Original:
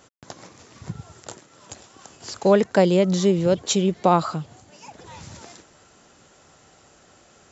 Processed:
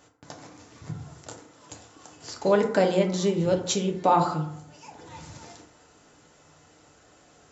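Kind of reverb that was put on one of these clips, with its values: FDN reverb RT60 0.7 s, low-frequency decay 1×, high-frequency decay 0.45×, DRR 1.5 dB; trim -5 dB

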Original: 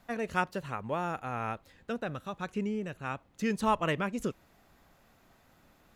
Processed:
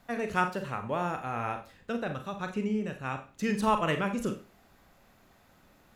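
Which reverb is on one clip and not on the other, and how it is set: Schroeder reverb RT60 0.34 s, combs from 30 ms, DRR 6 dB; trim +1 dB

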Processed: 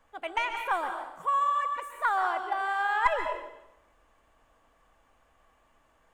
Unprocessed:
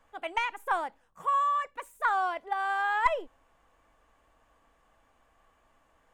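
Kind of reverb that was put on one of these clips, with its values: plate-style reverb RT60 0.86 s, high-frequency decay 0.95×, pre-delay 115 ms, DRR 5 dB

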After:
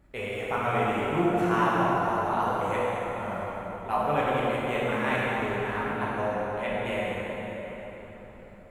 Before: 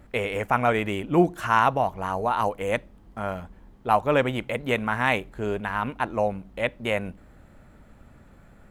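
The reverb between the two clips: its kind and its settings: plate-style reverb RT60 4.7 s, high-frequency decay 0.65×, DRR -8 dB; trim -11 dB

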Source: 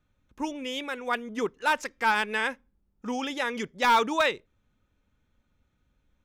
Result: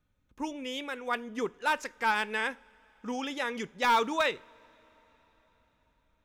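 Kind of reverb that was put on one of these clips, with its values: two-slope reverb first 0.34 s, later 4.9 s, from -22 dB, DRR 16.5 dB; trim -3.5 dB

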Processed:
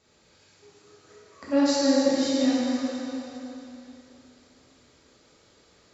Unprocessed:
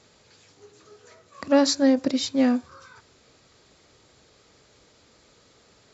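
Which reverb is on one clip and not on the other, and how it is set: plate-style reverb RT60 3.2 s, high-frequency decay 0.95×, DRR -8.5 dB; trim -10.5 dB

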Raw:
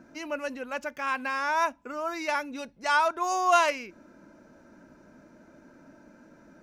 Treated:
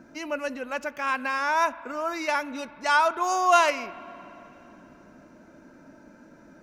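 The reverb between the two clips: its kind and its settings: spring tank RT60 3.2 s, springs 49/58 ms, chirp 40 ms, DRR 17.5 dB; trim +2.5 dB

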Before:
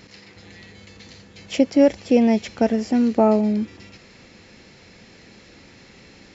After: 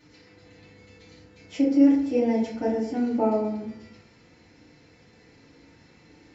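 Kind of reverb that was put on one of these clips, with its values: FDN reverb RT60 0.75 s, low-frequency decay 1.2×, high-frequency decay 0.4×, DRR -9 dB; trim -17.5 dB

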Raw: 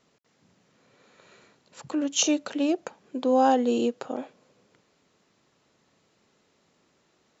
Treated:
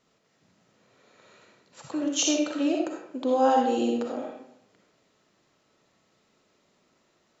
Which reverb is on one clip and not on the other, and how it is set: algorithmic reverb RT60 0.69 s, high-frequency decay 0.75×, pre-delay 20 ms, DRR 0 dB; trim -3 dB

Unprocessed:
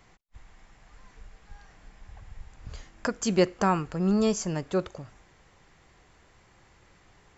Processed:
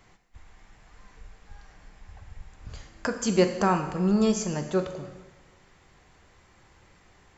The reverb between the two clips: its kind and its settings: plate-style reverb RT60 1.2 s, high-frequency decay 0.95×, DRR 6 dB

